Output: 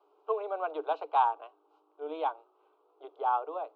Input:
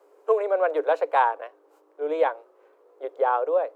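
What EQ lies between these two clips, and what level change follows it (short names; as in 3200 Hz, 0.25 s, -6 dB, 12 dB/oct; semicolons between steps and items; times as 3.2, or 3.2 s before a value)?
speaker cabinet 250–3400 Hz, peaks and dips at 390 Hz -7 dB, 670 Hz -6 dB, 990 Hz -6 dB, 2100 Hz -10 dB; low shelf 460 Hz -8.5 dB; fixed phaser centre 350 Hz, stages 8; +3.0 dB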